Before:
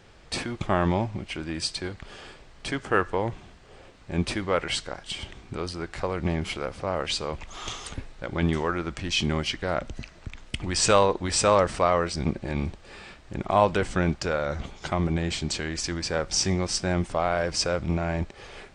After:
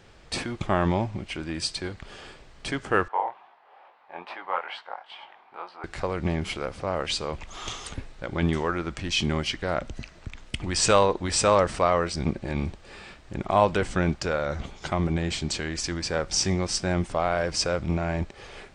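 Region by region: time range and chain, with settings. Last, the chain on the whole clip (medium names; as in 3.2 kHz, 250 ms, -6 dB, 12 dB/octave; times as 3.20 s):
3.08–5.84 s: resonant high-pass 840 Hz, resonance Q 3.6 + distance through air 390 m + chorus 2.3 Hz, delay 16.5 ms, depth 7.6 ms
whole clip: none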